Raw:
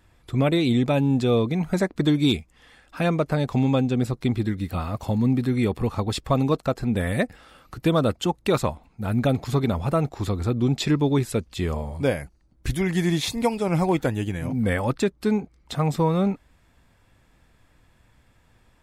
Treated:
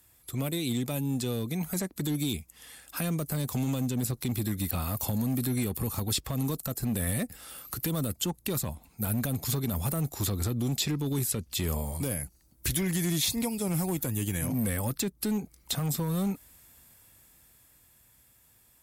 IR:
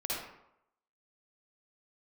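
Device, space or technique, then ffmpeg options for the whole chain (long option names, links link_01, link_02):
FM broadcast chain: -filter_complex "[0:a]highpass=45,dynaudnorm=framelen=210:gausssize=21:maxgain=9dB,acrossover=split=280|5900[link_01][link_02][link_03];[link_01]acompressor=threshold=-17dB:ratio=4[link_04];[link_02]acompressor=threshold=-27dB:ratio=4[link_05];[link_03]acompressor=threshold=-49dB:ratio=4[link_06];[link_04][link_05][link_06]amix=inputs=3:normalize=0,aemphasis=mode=production:type=50fm,alimiter=limit=-13dB:level=0:latency=1:release=21,asoftclip=type=hard:threshold=-15.5dB,lowpass=frequency=15000:width=0.5412,lowpass=frequency=15000:width=1.3066,aemphasis=mode=production:type=50fm,volume=-8dB"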